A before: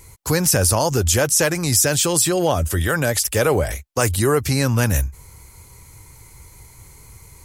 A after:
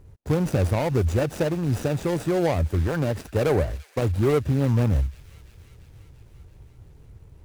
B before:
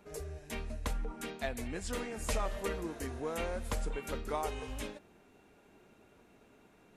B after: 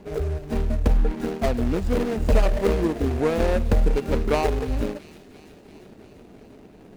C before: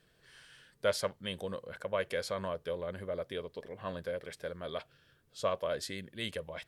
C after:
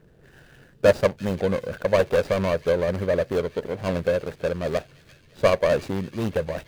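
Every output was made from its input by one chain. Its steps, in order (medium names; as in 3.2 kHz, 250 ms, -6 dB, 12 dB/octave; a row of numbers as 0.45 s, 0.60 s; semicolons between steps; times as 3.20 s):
median filter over 41 samples; feedback echo behind a high-pass 342 ms, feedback 69%, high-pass 2.5 kHz, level -14.5 dB; normalise loudness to -24 LUFS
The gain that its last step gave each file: -1.5 dB, +17.5 dB, +17.0 dB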